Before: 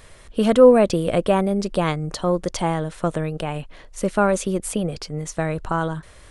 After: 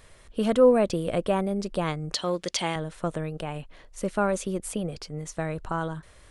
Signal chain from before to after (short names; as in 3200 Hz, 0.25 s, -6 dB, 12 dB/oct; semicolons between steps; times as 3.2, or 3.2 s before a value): 2.13–2.76 weighting filter D; gain -6.5 dB